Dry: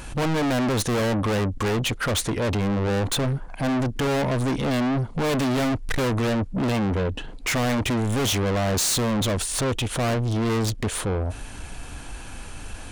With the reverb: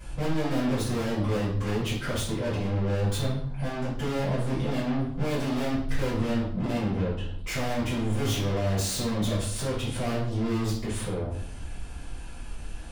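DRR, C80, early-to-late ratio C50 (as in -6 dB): -12.0 dB, 8.0 dB, 3.5 dB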